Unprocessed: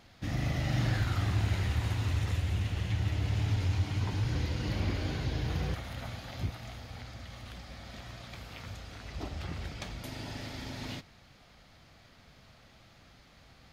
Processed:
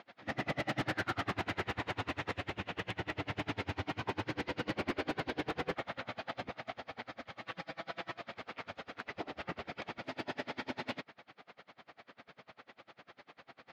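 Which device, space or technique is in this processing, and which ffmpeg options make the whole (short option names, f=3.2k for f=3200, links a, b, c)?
helicopter radio: -filter_complex "[0:a]asettb=1/sr,asplit=3[a][b][c];[a]atrim=end=7.414[d];[b]atrim=start=7.41:end=8.17,asetpts=PTS-STARTPTS,afade=t=in:d=0.004:c=qsin,afade=t=out:st=0.756:d=0.004:c=qsin,aecho=1:1:6.1:0.97,atrim=end_sample=33516[e];[c]atrim=start=8.166[f];[d][e]acrossfade=d=0.004:c1=hsin:c2=qsin[g];[g][f]acrossfade=d=0.004:c1=qsin:c2=hsin,highpass=330,lowpass=2.5k,aeval=exprs='val(0)*pow(10,-31*(0.5-0.5*cos(2*PI*10*n/s))/20)':c=same,asoftclip=type=hard:threshold=-39.5dB,volume=11.5dB"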